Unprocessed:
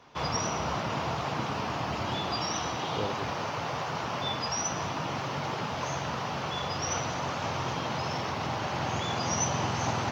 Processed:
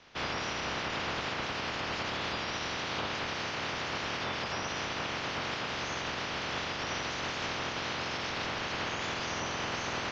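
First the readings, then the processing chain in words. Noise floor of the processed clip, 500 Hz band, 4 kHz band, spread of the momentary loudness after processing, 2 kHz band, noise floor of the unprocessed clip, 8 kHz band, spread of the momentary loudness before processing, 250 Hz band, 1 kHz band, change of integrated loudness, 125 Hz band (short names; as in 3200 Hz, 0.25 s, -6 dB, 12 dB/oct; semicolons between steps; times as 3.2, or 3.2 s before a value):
-37 dBFS, -4.0 dB, +0.5 dB, 1 LU, +2.5 dB, -34 dBFS, -8.5 dB, 3 LU, -5.0 dB, -5.0 dB, -2.5 dB, -9.0 dB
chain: spectral limiter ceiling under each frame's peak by 19 dB; limiter -23.5 dBFS, peak gain reduction 7 dB; air absorption 110 m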